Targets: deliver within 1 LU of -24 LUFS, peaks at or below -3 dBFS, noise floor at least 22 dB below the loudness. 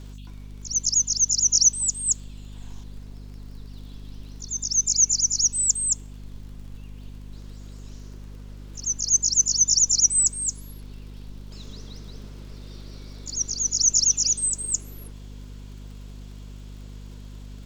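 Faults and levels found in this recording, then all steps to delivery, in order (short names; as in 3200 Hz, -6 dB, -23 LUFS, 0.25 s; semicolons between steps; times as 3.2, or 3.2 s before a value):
ticks 39/s; hum 50 Hz; harmonics up to 250 Hz; hum level -37 dBFS; loudness -20.0 LUFS; peak -7.5 dBFS; loudness target -24.0 LUFS
-> de-click; de-hum 50 Hz, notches 5; gain -4 dB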